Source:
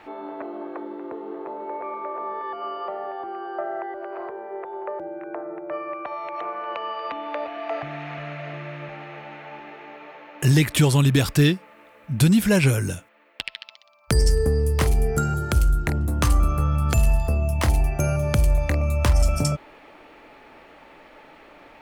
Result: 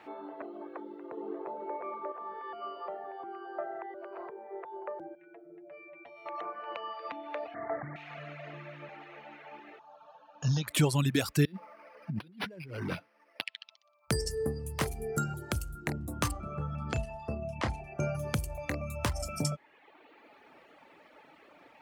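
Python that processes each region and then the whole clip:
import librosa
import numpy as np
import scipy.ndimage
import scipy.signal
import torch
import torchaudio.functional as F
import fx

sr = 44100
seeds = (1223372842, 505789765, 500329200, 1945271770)

y = fx.chain(x, sr, fx.highpass(hz=340.0, slope=6),
    fx.low_shelf(hz=480.0, db=11.5), at=(1.17, 2.12))
y = fx.chain(y, sr, fx.peak_eq(hz=1100.0, db=-13.0, octaves=1.1),
    fx.stiff_resonator(f0_hz=84.0, decay_s=0.22, stiffness=0.008),
    fx.env_flatten(amount_pct=70), at=(5.15, 6.26))
y = fx.chain(y, sr, fx.delta_mod(bps=16000, step_db=-29.0),
    fx.steep_lowpass(hz=2100.0, slope=96),
    fx.low_shelf(hz=420.0, db=4.0), at=(7.54, 7.96))
y = fx.chain(y, sr, fx.brickwall_lowpass(high_hz=7000.0),
    fx.fixed_phaser(hz=870.0, stages=4), at=(9.79, 10.68))
y = fx.chain(y, sr, fx.highpass(hz=120.0, slope=12),
    fx.over_compress(threshold_db=-31.0, ratio=-1.0),
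    fx.resample_linear(factor=6), at=(11.45, 13.44))
y = fx.chain(y, sr, fx.air_absorb(metres=120.0),
    fx.doubler(ms=32.0, db=-9.0), at=(16.31, 18.15))
y = fx.dereverb_blind(y, sr, rt60_s=1.1)
y = scipy.signal.sosfilt(scipy.signal.butter(2, 110.0, 'highpass', fs=sr, output='sos'), y)
y = y * 10.0 ** (-6.5 / 20.0)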